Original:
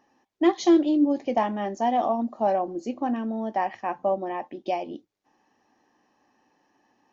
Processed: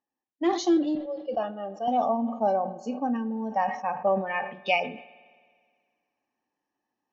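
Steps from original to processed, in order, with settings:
0:00.95–0:01.88: phaser with its sweep stopped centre 1,400 Hz, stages 8
noise reduction from a noise print of the clip's start 19 dB
speech leveller within 4 dB 2 s
0:04.07–0:04.80: flat-topped bell 2,200 Hz +15.5 dB
spring reverb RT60 1.9 s, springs 52 ms, chirp 55 ms, DRR 18 dB
level that may fall only so fast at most 99 dB per second
level −2.5 dB

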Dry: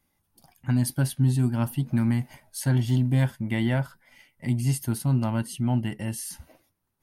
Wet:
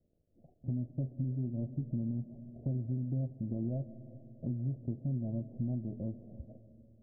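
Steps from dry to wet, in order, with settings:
variable-slope delta modulation 16 kbit/s
Butterworth low-pass 660 Hz 72 dB per octave
downward compressor 4 to 1, threshold −34 dBFS, peak gain reduction 13.5 dB
on a send: convolution reverb RT60 3.2 s, pre-delay 95 ms, DRR 14 dB

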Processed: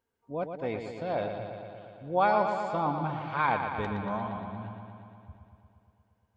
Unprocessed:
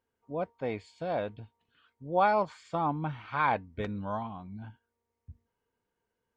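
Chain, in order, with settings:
bucket-brigade delay 117 ms, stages 4,096, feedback 74%, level −7 dB

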